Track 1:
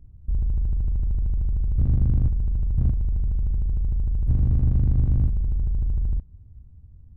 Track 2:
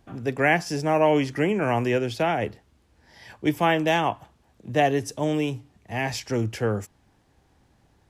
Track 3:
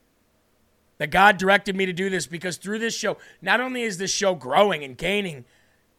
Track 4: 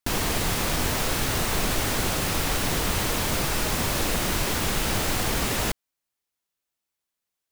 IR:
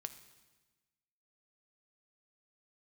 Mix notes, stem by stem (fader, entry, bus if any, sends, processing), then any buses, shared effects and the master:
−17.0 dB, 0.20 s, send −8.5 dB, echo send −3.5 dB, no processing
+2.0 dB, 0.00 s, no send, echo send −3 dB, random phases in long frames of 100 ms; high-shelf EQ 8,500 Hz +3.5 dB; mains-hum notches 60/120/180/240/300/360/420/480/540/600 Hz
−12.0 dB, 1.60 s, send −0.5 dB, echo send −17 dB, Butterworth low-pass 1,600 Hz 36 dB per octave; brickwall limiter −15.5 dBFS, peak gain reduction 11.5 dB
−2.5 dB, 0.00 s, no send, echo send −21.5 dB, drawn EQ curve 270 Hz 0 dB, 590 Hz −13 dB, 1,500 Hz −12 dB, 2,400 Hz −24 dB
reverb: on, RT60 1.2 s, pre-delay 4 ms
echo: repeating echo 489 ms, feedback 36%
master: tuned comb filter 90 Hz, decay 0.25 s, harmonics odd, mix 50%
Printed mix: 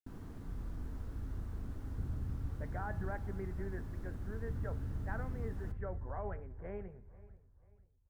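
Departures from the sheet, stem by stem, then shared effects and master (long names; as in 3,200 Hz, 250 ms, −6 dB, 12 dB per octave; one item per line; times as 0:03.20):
stem 2: muted
stem 3 −12.0 dB → −18.5 dB
stem 4 −2.5 dB → −13.5 dB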